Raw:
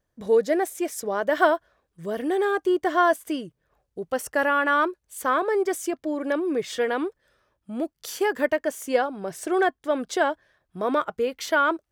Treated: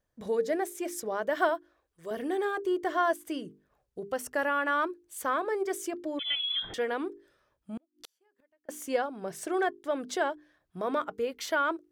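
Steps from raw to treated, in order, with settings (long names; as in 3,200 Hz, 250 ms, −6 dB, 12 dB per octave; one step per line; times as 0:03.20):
0:01.49–0:02.11: parametric band 180 Hz −14.5 dB 0.83 octaves
mains-hum notches 50/100/150/200/250/300/350/400/450 Hz
in parallel at −3 dB: downward compressor, threshold −31 dBFS, peak gain reduction 17 dB
0:06.19–0:06.74: on the sum: voice inversion scrambler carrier 3,700 Hz
0:07.77–0:08.69: gate with flip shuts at −22 dBFS, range −41 dB
level −8 dB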